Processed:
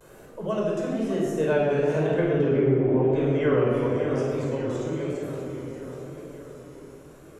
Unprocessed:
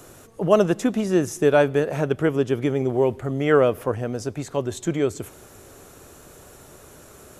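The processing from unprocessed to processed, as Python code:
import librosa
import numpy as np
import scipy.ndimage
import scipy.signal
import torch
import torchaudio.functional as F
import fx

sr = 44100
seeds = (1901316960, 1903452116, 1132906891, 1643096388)

p1 = fx.doppler_pass(x, sr, speed_mps=10, closest_m=1.5, pass_at_s=2.64)
p2 = fx.peak_eq(p1, sr, hz=110.0, db=-10.0, octaves=0.31)
p3 = p2 + fx.echo_feedback(p2, sr, ms=586, feedback_pct=50, wet_db=-12.5, dry=0)
p4 = fx.env_lowpass_down(p3, sr, base_hz=1200.0, full_db=-22.0)
p5 = fx.rider(p4, sr, range_db=5, speed_s=0.5)
p6 = fx.room_shoebox(p5, sr, seeds[0], volume_m3=2100.0, walls='mixed', distance_m=5.1)
p7 = fx.vibrato(p6, sr, rate_hz=1.0, depth_cents=71.0)
y = fx.band_squash(p7, sr, depth_pct=40)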